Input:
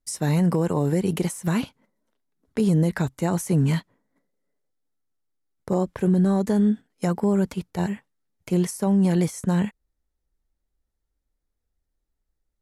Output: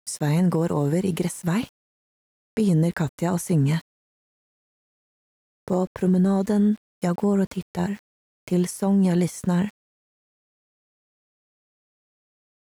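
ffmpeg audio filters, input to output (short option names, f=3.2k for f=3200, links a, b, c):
-af "aeval=exprs='val(0)*gte(abs(val(0)),0.00596)':c=same"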